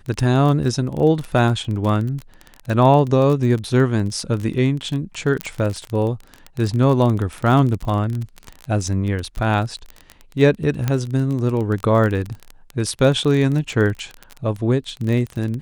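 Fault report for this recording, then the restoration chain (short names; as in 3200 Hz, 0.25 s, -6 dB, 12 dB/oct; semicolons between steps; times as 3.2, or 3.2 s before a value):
crackle 25/s -23 dBFS
5.41 pop -7 dBFS
10.88 pop -7 dBFS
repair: de-click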